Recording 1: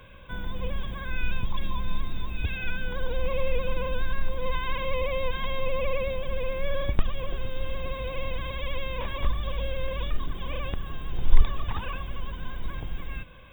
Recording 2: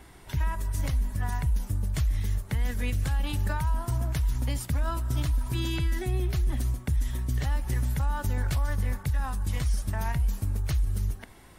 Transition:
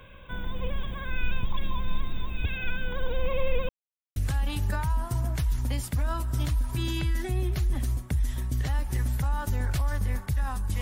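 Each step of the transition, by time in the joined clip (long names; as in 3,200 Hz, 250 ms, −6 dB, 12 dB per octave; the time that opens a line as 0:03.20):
recording 1
0:03.69–0:04.16: silence
0:04.16: continue with recording 2 from 0:02.93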